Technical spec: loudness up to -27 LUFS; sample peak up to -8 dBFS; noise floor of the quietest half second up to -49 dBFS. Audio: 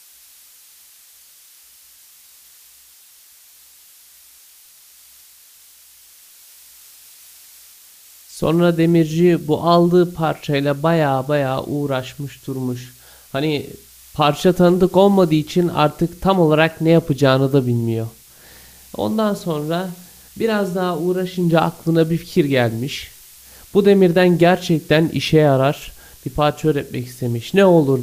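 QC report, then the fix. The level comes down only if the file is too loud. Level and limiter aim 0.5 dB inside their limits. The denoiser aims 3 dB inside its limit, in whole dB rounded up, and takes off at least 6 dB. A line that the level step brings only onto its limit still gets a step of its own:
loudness -17.0 LUFS: fail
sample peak -2.0 dBFS: fail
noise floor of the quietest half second -47 dBFS: fail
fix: gain -10.5 dB

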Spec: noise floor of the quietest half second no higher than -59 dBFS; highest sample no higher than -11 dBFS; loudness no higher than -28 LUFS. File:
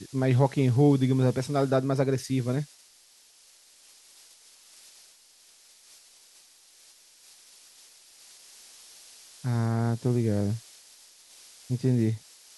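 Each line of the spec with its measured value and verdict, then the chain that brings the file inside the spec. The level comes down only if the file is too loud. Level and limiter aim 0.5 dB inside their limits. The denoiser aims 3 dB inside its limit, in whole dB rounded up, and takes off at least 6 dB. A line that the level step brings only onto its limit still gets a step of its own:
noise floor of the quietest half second -58 dBFS: fail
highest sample -8.5 dBFS: fail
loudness -26.0 LUFS: fail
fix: gain -2.5 dB; limiter -11.5 dBFS

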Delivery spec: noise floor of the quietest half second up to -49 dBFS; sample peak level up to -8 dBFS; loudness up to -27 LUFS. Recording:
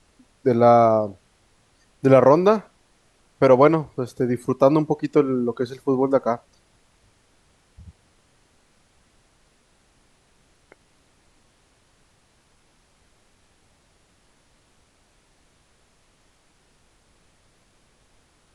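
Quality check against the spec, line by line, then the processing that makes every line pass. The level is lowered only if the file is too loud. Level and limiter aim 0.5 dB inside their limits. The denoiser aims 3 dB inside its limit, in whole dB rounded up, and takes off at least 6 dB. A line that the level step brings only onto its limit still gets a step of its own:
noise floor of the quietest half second -61 dBFS: OK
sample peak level -2.0 dBFS: fail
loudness -19.0 LUFS: fail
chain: gain -8.5 dB

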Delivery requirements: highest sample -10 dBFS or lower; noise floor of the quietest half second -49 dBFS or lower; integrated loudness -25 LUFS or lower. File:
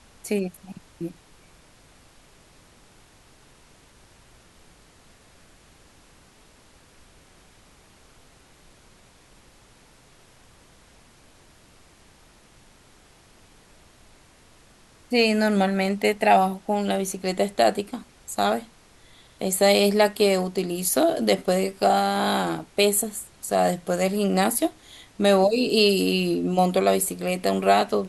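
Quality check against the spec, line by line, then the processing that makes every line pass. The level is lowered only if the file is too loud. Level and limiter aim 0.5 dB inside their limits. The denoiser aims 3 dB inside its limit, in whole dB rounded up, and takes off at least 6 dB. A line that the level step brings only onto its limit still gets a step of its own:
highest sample -5.5 dBFS: fail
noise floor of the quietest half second -54 dBFS: OK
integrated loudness -22.5 LUFS: fail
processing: gain -3 dB; limiter -10.5 dBFS

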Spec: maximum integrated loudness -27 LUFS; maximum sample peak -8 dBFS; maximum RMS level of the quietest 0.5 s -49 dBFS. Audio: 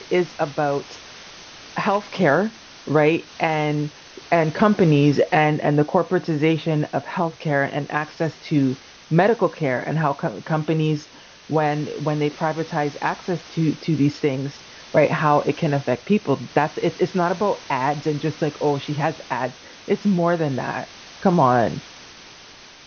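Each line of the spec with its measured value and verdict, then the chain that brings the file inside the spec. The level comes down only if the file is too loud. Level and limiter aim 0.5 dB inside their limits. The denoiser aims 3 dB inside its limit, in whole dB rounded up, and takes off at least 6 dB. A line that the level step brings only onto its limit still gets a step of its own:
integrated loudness -21.5 LUFS: fail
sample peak -4.5 dBFS: fail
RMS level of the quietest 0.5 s -44 dBFS: fail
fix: gain -6 dB

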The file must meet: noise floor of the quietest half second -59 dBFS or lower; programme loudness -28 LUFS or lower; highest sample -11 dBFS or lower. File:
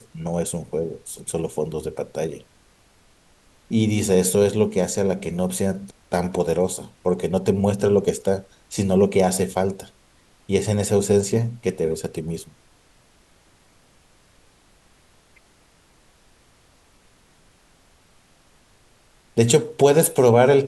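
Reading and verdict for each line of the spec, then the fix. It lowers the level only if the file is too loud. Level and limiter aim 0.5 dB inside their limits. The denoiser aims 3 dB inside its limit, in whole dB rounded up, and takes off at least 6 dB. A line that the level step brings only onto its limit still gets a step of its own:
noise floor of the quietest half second -57 dBFS: fail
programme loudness -21.5 LUFS: fail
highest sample -3.0 dBFS: fail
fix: gain -7 dB; limiter -11.5 dBFS

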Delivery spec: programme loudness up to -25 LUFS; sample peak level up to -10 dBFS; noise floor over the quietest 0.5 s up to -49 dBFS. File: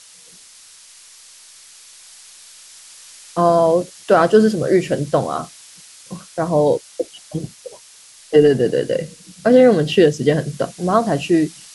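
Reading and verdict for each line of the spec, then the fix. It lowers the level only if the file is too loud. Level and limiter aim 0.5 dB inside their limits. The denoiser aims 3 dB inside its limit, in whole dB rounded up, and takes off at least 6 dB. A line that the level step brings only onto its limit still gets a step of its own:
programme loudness -17.0 LUFS: fail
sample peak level -2.0 dBFS: fail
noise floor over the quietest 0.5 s -45 dBFS: fail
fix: gain -8.5 dB

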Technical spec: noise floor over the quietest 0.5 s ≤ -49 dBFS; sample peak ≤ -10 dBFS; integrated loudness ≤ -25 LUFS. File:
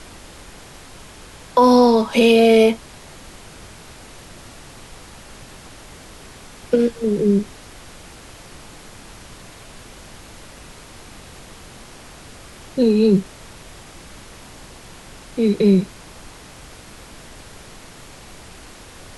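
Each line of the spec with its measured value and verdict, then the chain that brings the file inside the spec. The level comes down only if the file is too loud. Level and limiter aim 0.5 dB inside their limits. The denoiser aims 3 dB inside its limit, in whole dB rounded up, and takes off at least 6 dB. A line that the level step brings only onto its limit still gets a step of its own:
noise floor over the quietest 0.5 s -41 dBFS: fail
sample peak -4.0 dBFS: fail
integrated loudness -16.5 LUFS: fail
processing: gain -9 dB

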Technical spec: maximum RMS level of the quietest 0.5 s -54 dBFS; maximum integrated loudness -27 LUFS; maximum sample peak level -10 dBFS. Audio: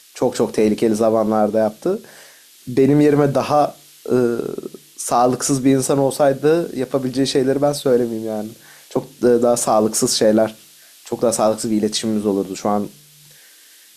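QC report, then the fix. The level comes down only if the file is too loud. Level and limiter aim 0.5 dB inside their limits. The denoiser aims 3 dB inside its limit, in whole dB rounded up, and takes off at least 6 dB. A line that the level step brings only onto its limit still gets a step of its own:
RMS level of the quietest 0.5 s -47 dBFS: fail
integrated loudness -18.0 LUFS: fail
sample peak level -5.0 dBFS: fail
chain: gain -9.5 dB

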